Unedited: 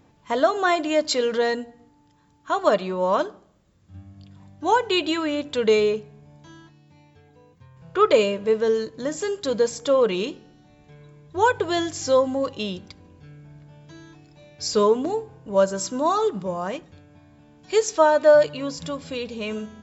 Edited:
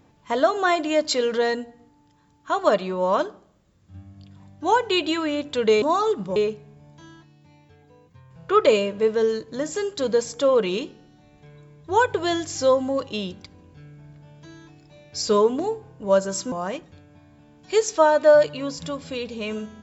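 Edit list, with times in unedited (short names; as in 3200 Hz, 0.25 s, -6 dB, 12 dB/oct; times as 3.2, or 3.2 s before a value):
15.98–16.52 move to 5.82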